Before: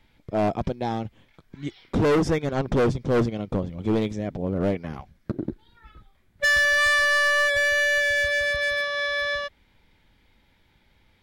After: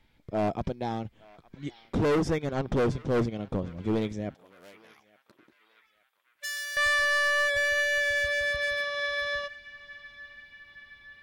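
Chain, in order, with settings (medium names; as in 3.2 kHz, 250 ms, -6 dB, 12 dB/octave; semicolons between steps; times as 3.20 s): 4.34–6.77 s: differentiator; band-passed feedback delay 869 ms, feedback 71%, band-pass 2.2 kHz, level -19 dB; trim -4.5 dB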